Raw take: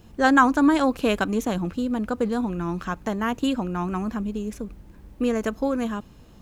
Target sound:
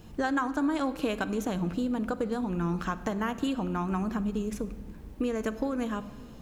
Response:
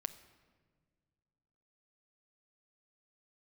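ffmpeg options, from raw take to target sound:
-filter_complex "[0:a]acompressor=threshold=-27dB:ratio=6[a];[1:a]atrim=start_sample=2205[b];[a][b]afir=irnorm=-1:irlink=0,volume=2.5dB"

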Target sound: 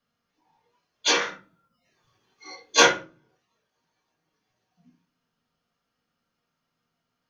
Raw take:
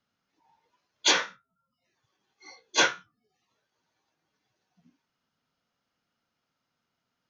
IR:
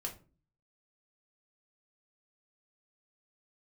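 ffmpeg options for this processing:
-filter_complex "[0:a]asettb=1/sr,asplit=3[a][b][c];[a]atrim=end=1.214[d];[b]atrim=start=1.21:end=2.86,asetpts=PTS-STARTPTS,afade=t=in:d=0.004:c=qsin,afade=t=out:st=1.646:d=0.004:c=qsin,acontrast=51[e];[c]atrim=start=2.856[f];[d][e]acrossfade=d=0.004:c1=hsin:c2=qsin[g];[g][f]acrossfade=d=0.004:c1=qsin:c2=hsin[h];[1:a]atrim=start_sample=2205[i];[h][i]afir=irnorm=-1:irlink=0,volume=2dB"

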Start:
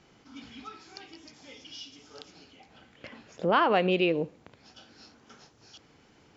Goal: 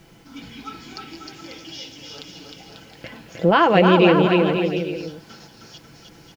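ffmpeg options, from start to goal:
-filter_complex "[0:a]aecho=1:1:6:0.46,acrusher=bits=10:mix=0:aa=0.000001,lowshelf=f=160:g=8,bandreject=f=1.2k:w=13,asplit=2[a][b];[b]aecho=0:1:310|542.5|716.9|847.7|945.7:0.631|0.398|0.251|0.158|0.1[c];[a][c]amix=inputs=2:normalize=0,volume=6.5dB"

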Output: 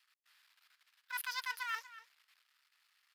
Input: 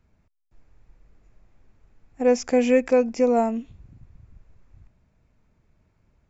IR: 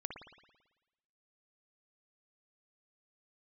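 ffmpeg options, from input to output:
-filter_complex "[0:a]aeval=exprs='if(lt(val(0),0),0.251*val(0),val(0))':c=same,highpass=f=750:w=0.5412,highpass=f=750:w=1.3066,areverse,acompressor=threshold=-42dB:ratio=20,areverse,asplit=2[a][b];[b]adelay=478.1,volume=-15dB,highshelf=f=4k:g=-10.8[c];[a][c]amix=inputs=2:normalize=0,asetrate=88200,aresample=44100,volume=6.5dB"

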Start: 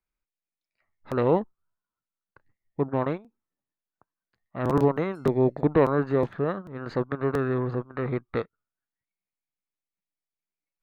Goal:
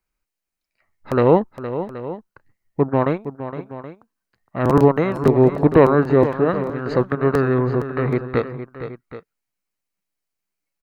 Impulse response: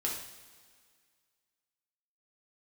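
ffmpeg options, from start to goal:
-filter_complex "[0:a]bandreject=f=3.5k:w=11,asplit=2[a][b];[b]aecho=0:1:464|775:0.266|0.168[c];[a][c]amix=inputs=2:normalize=0,volume=8dB"

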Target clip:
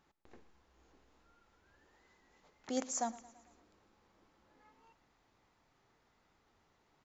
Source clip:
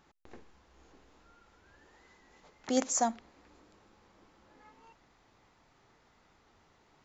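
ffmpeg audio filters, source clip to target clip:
-af "aecho=1:1:112|224|336|448|560:0.112|0.064|0.0365|0.0208|0.0118,volume=-7.5dB"

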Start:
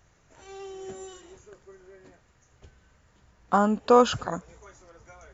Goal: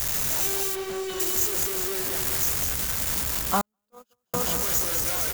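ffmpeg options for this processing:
-filter_complex "[0:a]aeval=exprs='val(0)+0.5*0.0531*sgn(val(0))':c=same,asplit=2[a][b];[b]aecho=0:1:202|404|606|808|1010:0.596|0.256|0.11|0.0474|0.0204[c];[a][c]amix=inputs=2:normalize=0,asettb=1/sr,asplit=3[d][e][f];[d]atrim=end=0.754[g];[e]atrim=start=0.75:end=1.2,asetpts=PTS-STARTPTS,afade=t=in:d=0.004:c=qsin,afade=t=out:st=0.446:d=0.004:c=qsin,acrossover=split=4200[h][i];[i]acompressor=threshold=-51dB:ratio=4:attack=1:release=60[j];[h][j]amix=inputs=2:normalize=0[k];[f]atrim=start=1.196[l];[g][k]acrossfade=d=0.004:c1=hsin:c2=qsin[m];[m][l]acrossfade=d=0.004:c1=qsin:c2=hsin,aemphasis=mode=production:type=75fm,asettb=1/sr,asplit=3[n][o][p];[n]atrim=end=3.614[q];[o]atrim=start=3.61:end=4.34,asetpts=PTS-STARTPTS,afade=t=in:d=0.004:c=qsin,afade=t=out:st=0.726:d=0.004:c=qsin,agate=range=-58dB:threshold=-9dB:ratio=16:detection=peak[r];[p]atrim=start=4.336[s];[q][r]acrossfade=d=0.004:c1=hsin:c2=qsin[t];[t][s]acrossfade=d=0.004:c1=qsin:c2=hsin,volume=-4dB"

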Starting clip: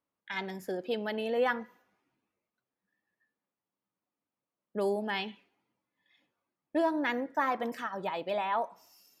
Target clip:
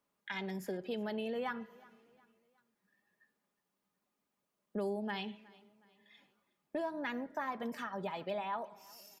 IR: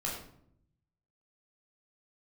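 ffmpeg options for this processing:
-filter_complex "[0:a]aecho=1:1:4.9:0.41,acrossover=split=130[a][b];[b]acompressor=threshold=-48dB:ratio=2.5[c];[a][c]amix=inputs=2:normalize=0,asplit=2[d][e];[e]aecho=0:1:365|730|1095:0.0708|0.029|0.0119[f];[d][f]amix=inputs=2:normalize=0,volume=5dB"

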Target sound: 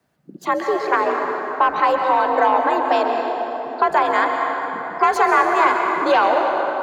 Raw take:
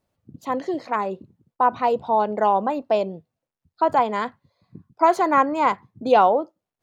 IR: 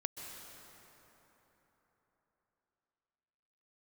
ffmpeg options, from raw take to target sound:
-filter_complex "[0:a]asplit=2[a][b];[b]acontrast=69,volume=0.5dB[c];[a][c]amix=inputs=2:normalize=0,equalizer=f=1.6k:t=o:w=0.57:g=8.5,acrossover=split=270|1700[d][e][f];[d]acompressor=threshold=-36dB:ratio=4[g];[e]acompressor=threshold=-12dB:ratio=4[h];[f]acompressor=threshold=-21dB:ratio=4[i];[g][h][i]amix=inputs=3:normalize=0[j];[1:a]atrim=start_sample=2205[k];[j][k]afir=irnorm=-1:irlink=0,afreqshift=57,volume=-1.5dB"

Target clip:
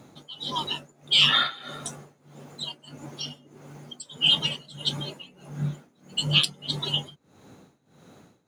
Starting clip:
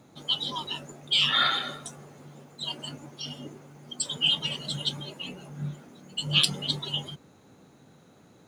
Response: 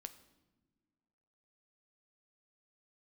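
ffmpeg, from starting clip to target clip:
-af "tremolo=f=1.6:d=0.91,volume=5.5dB"

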